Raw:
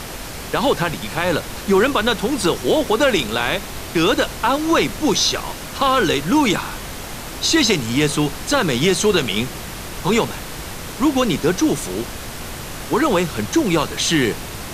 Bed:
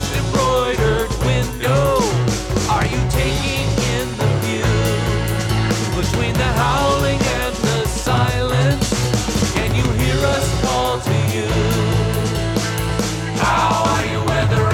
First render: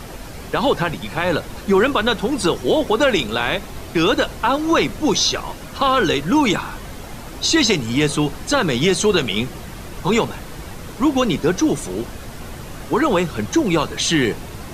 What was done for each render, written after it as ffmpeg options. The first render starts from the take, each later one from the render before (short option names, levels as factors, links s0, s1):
-af "afftdn=nr=8:nf=-31"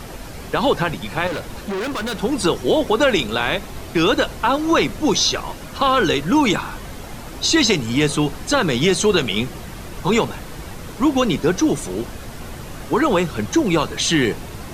-filter_complex "[0:a]asettb=1/sr,asplit=3[s0][s1][s2];[s0]atrim=end=1.274[s3];[s1]atrim=start=1.27:end=2.2,asetpts=PTS-STARTPTS,afade=t=in:d=0.004:c=qsin,afade=t=out:st=0.926:d=0.004:c=qsin,volume=13.3,asoftclip=hard,volume=0.075[s4];[s2]atrim=start=2.196[s5];[s3][s4]acrossfade=d=0.004:c1=hsin:c2=qsin[s6];[s6][s5]acrossfade=d=0.004:c1=qsin:c2=hsin"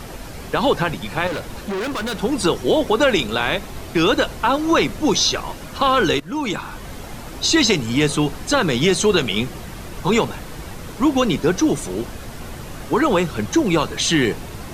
-filter_complex "[0:a]asplit=2[s0][s1];[s0]atrim=end=6.2,asetpts=PTS-STARTPTS,afade=t=out:st=6.196:d=0.004:c=hsin:silence=0.16788[s2];[s1]atrim=start=6.2,asetpts=PTS-STARTPTS,afade=t=in:d=0.73:silence=0.16788[s3];[s2][s3]concat=n=2:v=0:a=1"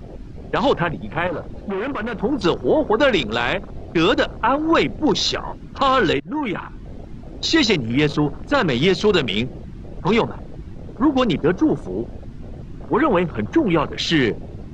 -af "lowpass=5100,afwtdn=0.0355"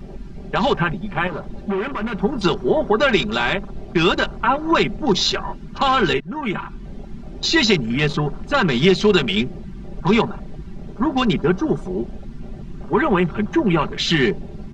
-af "equalizer=f=520:t=o:w=0.48:g=-6.5,aecho=1:1:5.1:0.65"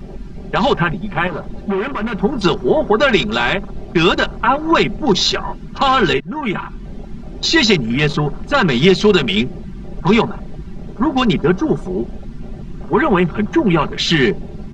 -af "volume=1.5,alimiter=limit=0.891:level=0:latency=1"